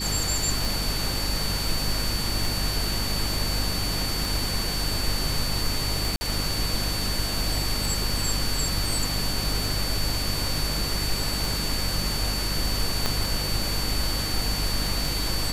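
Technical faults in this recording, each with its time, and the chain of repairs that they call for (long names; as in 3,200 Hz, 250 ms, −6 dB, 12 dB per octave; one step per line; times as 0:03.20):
mains hum 50 Hz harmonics 6 −31 dBFS
scratch tick 33 1/3 rpm
whistle 4,500 Hz −30 dBFS
0:06.16–0:06.21: drop-out 50 ms
0:13.06: click −8 dBFS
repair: click removal
hum removal 50 Hz, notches 6
notch filter 4,500 Hz, Q 30
repair the gap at 0:06.16, 50 ms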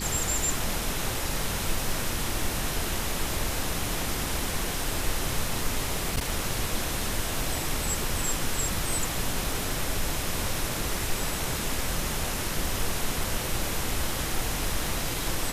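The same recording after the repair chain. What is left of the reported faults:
0:13.06: click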